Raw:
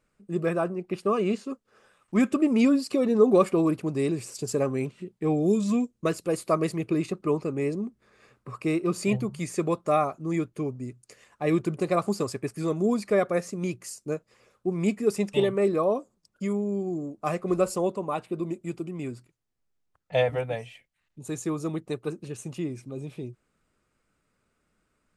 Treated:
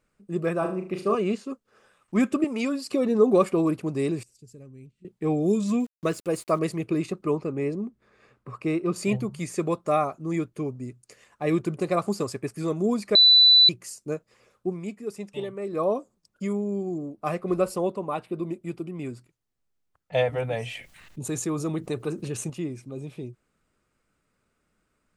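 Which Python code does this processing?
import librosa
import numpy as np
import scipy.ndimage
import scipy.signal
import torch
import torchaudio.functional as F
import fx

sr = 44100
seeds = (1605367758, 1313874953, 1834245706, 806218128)

y = fx.room_flutter(x, sr, wall_m=6.4, rt60_s=0.41, at=(0.58, 1.15))
y = fx.highpass(y, sr, hz=570.0, slope=6, at=(2.44, 2.85))
y = fx.tone_stack(y, sr, knobs='10-0-1', at=(4.23, 5.05))
y = fx.sample_gate(y, sr, floor_db=-46.5, at=(5.8, 6.59))
y = fx.high_shelf(y, sr, hz=5300.0, db=-9.5, at=(7.35, 8.96))
y = fx.peak_eq(y, sr, hz=7000.0, db=-7.5, octaves=0.49, at=(16.98, 19.05))
y = fx.env_flatten(y, sr, amount_pct=50, at=(20.39, 22.5))
y = fx.edit(y, sr, fx.bleep(start_s=13.15, length_s=0.54, hz=3980.0, db=-11.5),
    fx.fade_down_up(start_s=14.67, length_s=1.16, db=-9.5, fade_s=0.14), tone=tone)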